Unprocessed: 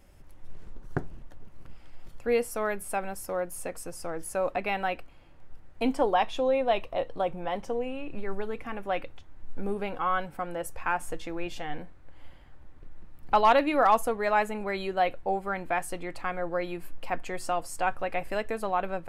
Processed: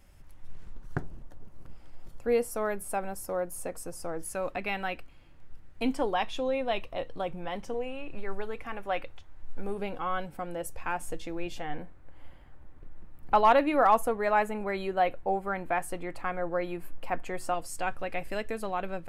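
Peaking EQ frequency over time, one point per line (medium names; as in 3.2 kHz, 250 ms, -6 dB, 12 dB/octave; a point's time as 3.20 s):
peaking EQ -5.5 dB 1.8 oct
420 Hz
from 1.02 s 2.6 kHz
from 4.25 s 680 Hz
from 7.74 s 230 Hz
from 9.78 s 1.3 kHz
from 11.56 s 4.7 kHz
from 17.54 s 900 Hz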